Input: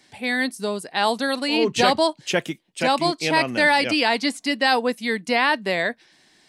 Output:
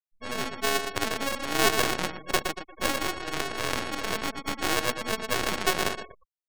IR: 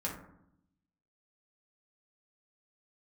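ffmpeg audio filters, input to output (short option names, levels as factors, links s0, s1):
-filter_complex "[0:a]asplit=3[s0][s1][s2];[s0]afade=t=out:st=1.82:d=0.02[s3];[s1]aeval=exprs='val(0)*sin(2*PI*470*n/s)':c=same,afade=t=in:st=1.82:d=0.02,afade=t=out:st=2.22:d=0.02[s4];[s2]afade=t=in:st=2.22:d=0.02[s5];[s3][s4][s5]amix=inputs=3:normalize=0,asettb=1/sr,asplit=3[s6][s7][s8];[s6]atrim=end=3.004[s9];[s7]atrim=start=3:end=4.07,asetpts=PTS-STARTPTS,afade=t=in:d=0.004:c=qsin,afade=t=out:st=1.066:d=0.004:c=qsin,aeval=exprs='max(val(0),0)':c=same[s10];[s8]atrim=start=4.066[s11];[s9][s10]acrossfade=d=0.004:c1=hsin:c2=qsin[s12];[s12][s11]acrossfade=d=0.004:c1=qsin:c2=hsin,equalizer=f=390:w=5.3:g=14.5,bandreject=f=216.9:t=h:w=4,bandreject=f=433.8:t=h:w=4,bandreject=f=650.7:t=h:w=4,bandreject=f=867.6:t=h:w=4,bandreject=f=1084.5:t=h:w=4,bandreject=f=1301.4:t=h:w=4,bandreject=f=1518.3:t=h:w=4,asplit=2[s13][s14];[s14]aecho=0:1:116|232|348|464|580:0.447|0.183|0.0751|0.0308|0.0126[s15];[s13][s15]amix=inputs=2:normalize=0,acrusher=samples=40:mix=1:aa=0.000001,highpass=f=140:w=0.5412,highpass=f=140:w=1.3066,tiltshelf=f=760:g=-5.5,aeval=exprs='max(val(0),0)':c=same,afftfilt=real='re*gte(hypot(re,im),0.0251)':imag='im*gte(hypot(re,im),0.0251)':win_size=1024:overlap=0.75,volume=0.631"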